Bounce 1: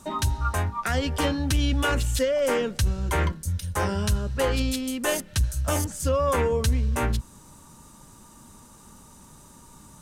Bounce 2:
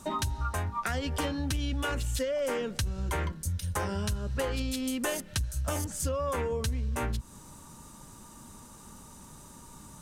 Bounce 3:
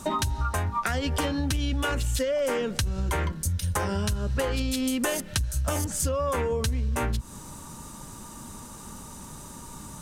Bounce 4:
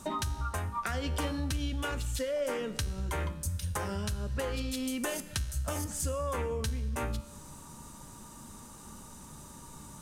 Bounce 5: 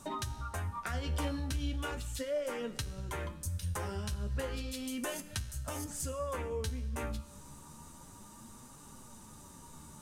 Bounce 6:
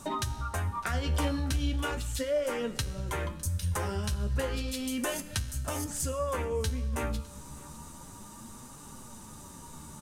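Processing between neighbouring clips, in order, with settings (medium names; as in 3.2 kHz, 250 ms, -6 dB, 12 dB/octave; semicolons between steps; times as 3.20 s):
compression, threshold -28 dBFS, peak gain reduction 10 dB
compression 2.5:1, threshold -32 dBFS, peak gain reduction 4.5 dB; trim +7.5 dB
feedback comb 73 Hz, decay 1 s, harmonics all, mix 60%
flange 0.34 Hz, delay 6.8 ms, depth 8.5 ms, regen +44%
delay 606 ms -23 dB; trim +5.5 dB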